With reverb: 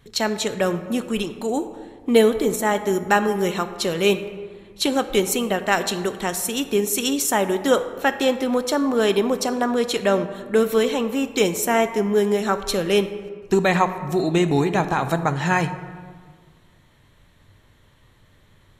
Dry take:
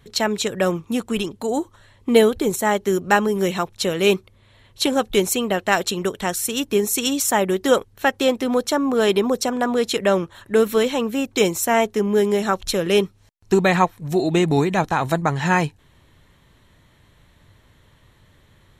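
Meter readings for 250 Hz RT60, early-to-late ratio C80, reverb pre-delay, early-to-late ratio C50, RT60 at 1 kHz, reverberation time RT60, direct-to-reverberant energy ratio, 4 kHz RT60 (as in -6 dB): 1.9 s, 12.5 dB, 3 ms, 11.5 dB, 1.6 s, 1.7 s, 9.5 dB, 0.90 s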